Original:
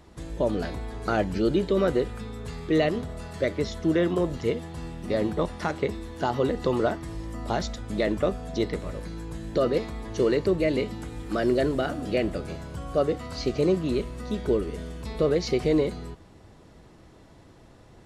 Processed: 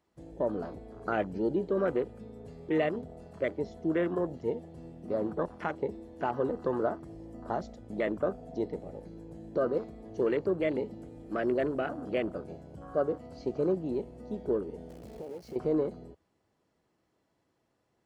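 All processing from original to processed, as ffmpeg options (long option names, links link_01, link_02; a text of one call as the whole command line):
ffmpeg -i in.wav -filter_complex "[0:a]asettb=1/sr,asplit=3[link_01][link_02][link_03];[link_01]atrim=end=14.894[link_04];[link_02]atrim=start=14.89:end=15.56,asetpts=PTS-STARTPTS,afade=type=in:duration=0.004:curve=qsin,afade=type=out:start_time=0.666:duration=0.004:curve=qsin,acompressor=threshold=-31dB:ratio=16:attack=3.2:release=140:knee=1:detection=peak,acrusher=bits=7:dc=4:mix=0:aa=0.000001[link_05];[link_03]atrim=start=15.556[link_06];[link_04][link_05]acrossfade=duration=0.004:curve1=hsin:curve2=qsin[link_07];[link_07][link_06]acrossfade=duration=0.004:curve1=qsin:curve2=hsin,highpass=frequency=240:poles=1,afwtdn=0.0178,bandreject=frequency=3700:width=15,volume=-4dB" out.wav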